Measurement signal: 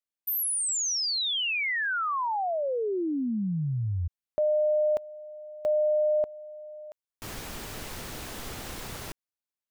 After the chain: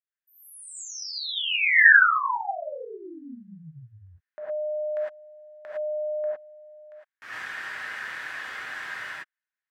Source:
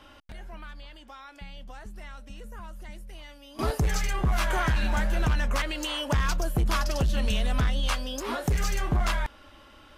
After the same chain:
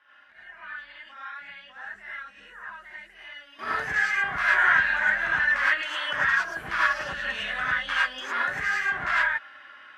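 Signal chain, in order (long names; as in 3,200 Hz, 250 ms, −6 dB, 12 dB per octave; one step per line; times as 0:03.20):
automatic gain control gain up to 8 dB
resonant band-pass 1,700 Hz, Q 4.9
reverb whose tail is shaped and stops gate 130 ms rising, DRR −7.5 dB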